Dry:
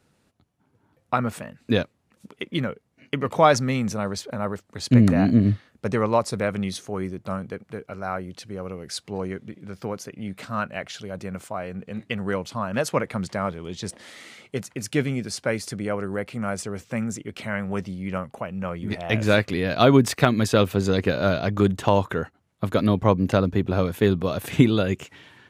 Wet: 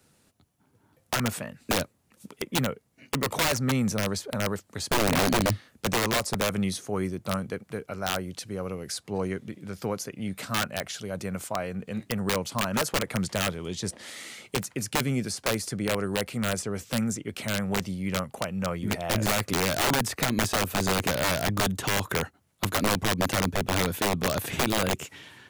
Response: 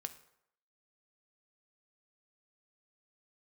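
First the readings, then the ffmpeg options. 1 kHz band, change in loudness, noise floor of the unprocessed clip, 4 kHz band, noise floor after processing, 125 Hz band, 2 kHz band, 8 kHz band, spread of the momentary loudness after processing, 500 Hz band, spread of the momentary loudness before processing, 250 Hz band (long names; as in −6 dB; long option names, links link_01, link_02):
−3.0 dB, −4.0 dB, −67 dBFS, +3.0 dB, −66 dBFS, −6.0 dB, 0.0 dB, +6.0 dB, 9 LU, −6.0 dB, 16 LU, −6.0 dB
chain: -filter_complex "[0:a]highshelf=frequency=5600:gain=11.5,acrossover=split=90|1900|6100[link_01][link_02][link_03][link_04];[link_01]acompressor=threshold=-39dB:ratio=4[link_05];[link_02]acompressor=threshold=-20dB:ratio=4[link_06];[link_03]acompressor=threshold=-39dB:ratio=4[link_07];[link_04]acompressor=threshold=-38dB:ratio=4[link_08];[link_05][link_06][link_07][link_08]amix=inputs=4:normalize=0,aeval=exprs='(mod(7.5*val(0)+1,2)-1)/7.5':channel_layout=same"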